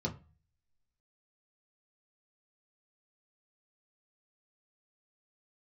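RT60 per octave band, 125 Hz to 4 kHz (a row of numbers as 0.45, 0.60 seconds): 0.60, 0.40, 0.30, 0.35, 0.30, 0.25 seconds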